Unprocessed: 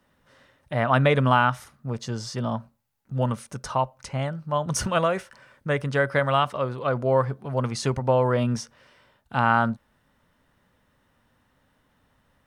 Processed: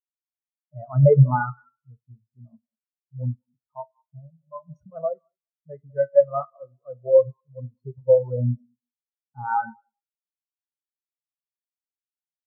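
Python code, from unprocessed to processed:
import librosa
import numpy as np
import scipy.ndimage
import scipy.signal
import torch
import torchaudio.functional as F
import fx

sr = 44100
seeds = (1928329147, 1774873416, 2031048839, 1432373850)

y = fx.echo_thinned(x, sr, ms=197, feedback_pct=35, hz=330.0, wet_db=-9.5)
y = fx.rev_schroeder(y, sr, rt60_s=1.1, comb_ms=25, drr_db=6.0)
y = fx.spectral_expand(y, sr, expansion=4.0)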